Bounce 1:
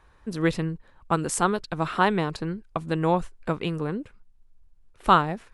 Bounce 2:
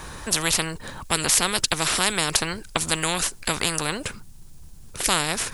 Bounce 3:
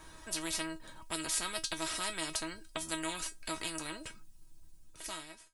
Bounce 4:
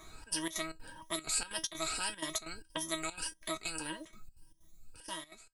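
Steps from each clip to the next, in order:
tone controls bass +9 dB, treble +15 dB; spectrum-flattening compressor 4:1; trim -1.5 dB
fade out at the end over 0.88 s; feedback comb 320 Hz, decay 0.15 s, harmonics all, mix 90%; trim -4 dB
drifting ripple filter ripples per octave 1.2, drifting +1.7 Hz, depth 15 dB; trance gate "xxx.xx.xx.xx" 189 bpm -12 dB; trim -2 dB

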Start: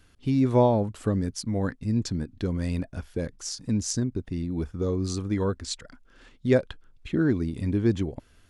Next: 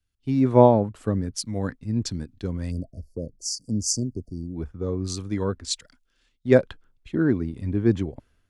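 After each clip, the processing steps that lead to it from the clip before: spectral selection erased 2.71–4.56 s, 710–4400 Hz; three bands expanded up and down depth 70%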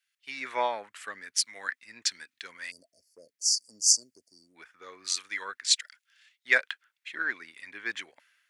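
resonant high-pass 1.9 kHz, resonance Q 2.5; trim +4 dB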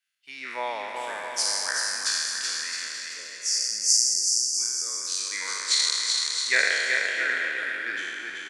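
spectral sustain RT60 2.09 s; on a send: bouncing-ball echo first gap 380 ms, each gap 0.75×, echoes 5; on the sum: trim -4 dB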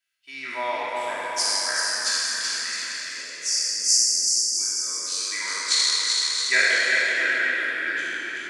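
simulated room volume 3100 m³, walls mixed, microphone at 2.9 m; trim -1 dB

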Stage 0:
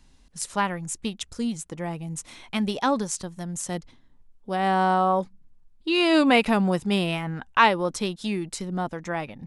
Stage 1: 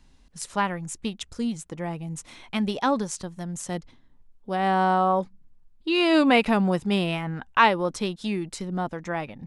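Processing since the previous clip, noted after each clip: treble shelf 6 kHz -6 dB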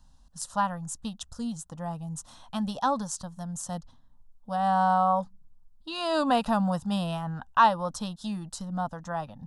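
static phaser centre 920 Hz, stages 4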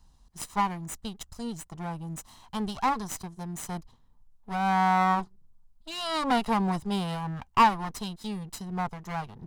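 comb filter that takes the minimum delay 1 ms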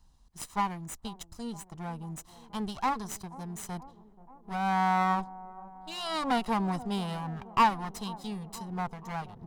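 feedback echo behind a band-pass 482 ms, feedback 68%, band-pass 420 Hz, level -15.5 dB; trim -3 dB

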